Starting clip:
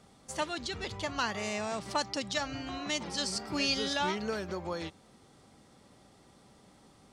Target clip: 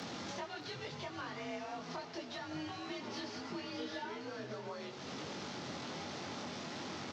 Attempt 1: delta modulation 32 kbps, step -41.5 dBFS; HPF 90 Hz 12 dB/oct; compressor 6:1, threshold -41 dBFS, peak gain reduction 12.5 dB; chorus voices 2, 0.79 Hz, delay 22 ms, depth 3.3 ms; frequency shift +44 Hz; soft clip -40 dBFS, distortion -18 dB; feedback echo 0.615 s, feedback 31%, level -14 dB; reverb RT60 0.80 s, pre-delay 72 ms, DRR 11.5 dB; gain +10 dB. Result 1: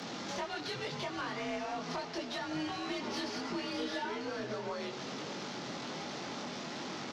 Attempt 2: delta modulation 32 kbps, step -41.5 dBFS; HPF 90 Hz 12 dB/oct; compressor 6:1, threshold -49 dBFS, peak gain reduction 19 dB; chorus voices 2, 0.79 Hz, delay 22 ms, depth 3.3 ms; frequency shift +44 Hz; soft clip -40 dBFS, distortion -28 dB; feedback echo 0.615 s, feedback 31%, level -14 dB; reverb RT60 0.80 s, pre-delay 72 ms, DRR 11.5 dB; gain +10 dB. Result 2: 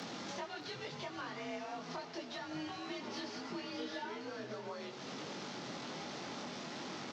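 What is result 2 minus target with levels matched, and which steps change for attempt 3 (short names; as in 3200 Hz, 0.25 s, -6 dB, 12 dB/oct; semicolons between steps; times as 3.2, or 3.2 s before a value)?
125 Hz band -2.5 dB
change: HPF 40 Hz 12 dB/oct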